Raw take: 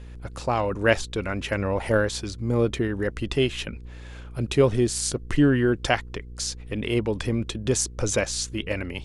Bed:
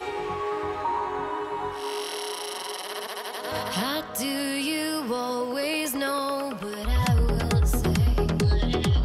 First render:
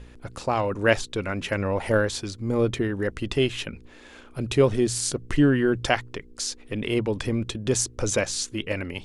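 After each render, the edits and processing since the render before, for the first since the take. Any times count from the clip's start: de-hum 60 Hz, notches 3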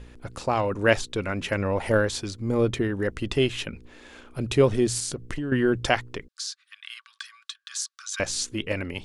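4.99–5.52 compressor 16:1, threshold -26 dBFS; 6.28–8.2 rippled Chebyshev high-pass 1100 Hz, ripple 9 dB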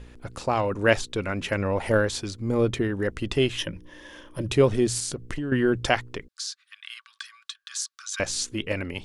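3.58–4.49 ripple EQ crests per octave 1.2, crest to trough 12 dB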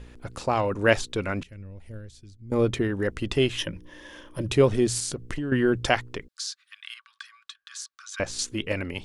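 1.43–2.52 passive tone stack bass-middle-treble 10-0-1; 6.94–8.39 high shelf 2800 Hz -8.5 dB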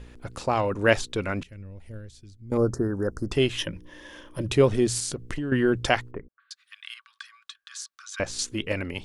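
2.57–3.32 elliptic band-stop 1500–5000 Hz; 6.11–6.51 Gaussian blur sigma 5.8 samples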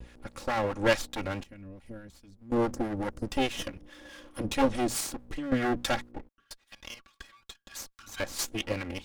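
minimum comb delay 3.6 ms; harmonic tremolo 4.7 Hz, depth 50%, crossover 920 Hz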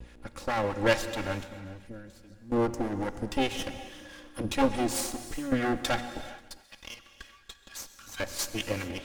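thinning echo 0.134 s, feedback 75%, high-pass 410 Hz, level -23.5 dB; non-linear reverb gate 0.46 s flat, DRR 10.5 dB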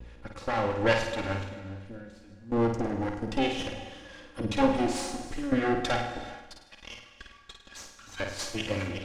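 air absorption 68 m; flutter echo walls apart 8.9 m, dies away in 0.56 s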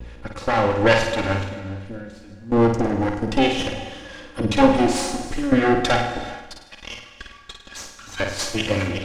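gain +9 dB; limiter -3 dBFS, peak gain reduction 2.5 dB

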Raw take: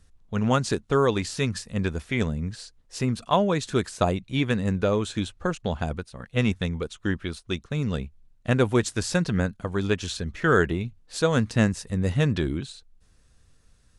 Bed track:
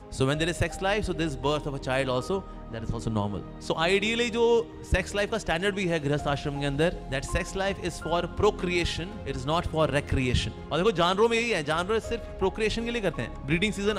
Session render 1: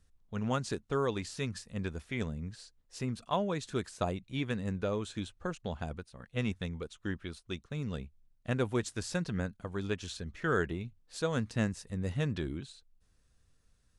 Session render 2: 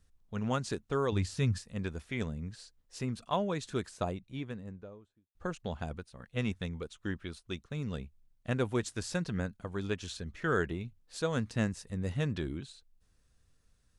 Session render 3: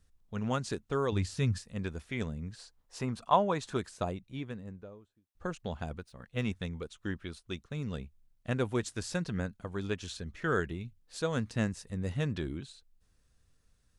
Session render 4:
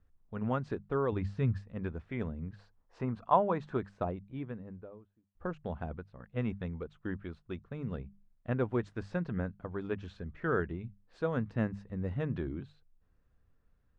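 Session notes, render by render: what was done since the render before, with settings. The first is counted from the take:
gain -10 dB
1.12–1.58 bell 92 Hz +12.5 dB 1.8 oct; 3.67–5.35 studio fade out
2.59–3.77 bell 910 Hz +9 dB 1.3 oct; 5.88–6.42 median filter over 3 samples; 10.6–11.02 bell 740 Hz -5.5 dB 2.4 oct
LPF 1600 Hz 12 dB/oct; notches 50/100/150/200 Hz

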